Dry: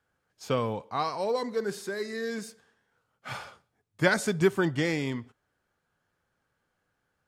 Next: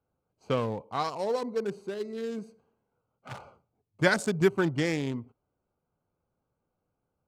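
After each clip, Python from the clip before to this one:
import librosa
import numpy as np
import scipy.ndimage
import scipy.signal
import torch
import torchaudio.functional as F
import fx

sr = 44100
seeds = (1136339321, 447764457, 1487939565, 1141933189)

y = fx.wiener(x, sr, points=25)
y = fx.peak_eq(y, sr, hz=7800.0, db=4.0, octaves=1.4)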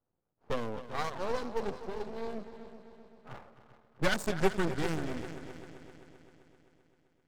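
y = fx.env_lowpass(x, sr, base_hz=1100.0, full_db=-24.0)
y = fx.echo_heads(y, sr, ms=130, heads='second and third', feedback_pct=54, wet_db=-14)
y = np.maximum(y, 0.0)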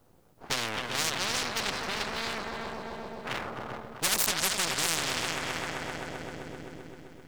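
y = fx.spectral_comp(x, sr, ratio=10.0)
y = y * librosa.db_to_amplitude(4.5)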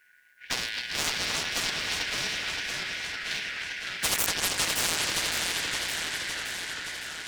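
y = fx.band_shuffle(x, sr, order='4123')
y = fx.echo_warbled(y, sr, ms=565, feedback_pct=68, rate_hz=2.8, cents=211, wet_db=-4.5)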